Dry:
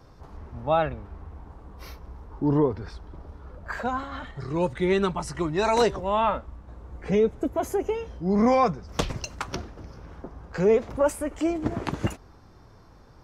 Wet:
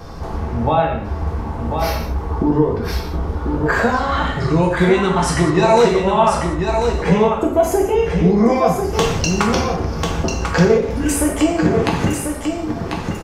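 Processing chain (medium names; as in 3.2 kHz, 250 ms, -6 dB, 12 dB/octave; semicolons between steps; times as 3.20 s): spectral replace 10.84–11.14 s, 330–1500 Hz after; compression 6:1, threshold -33 dBFS, peak gain reduction 15.5 dB; on a send: delay 1043 ms -6 dB; on the sum: gated-style reverb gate 230 ms falling, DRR -1 dB; loudness maximiser +17.5 dB; trim -1 dB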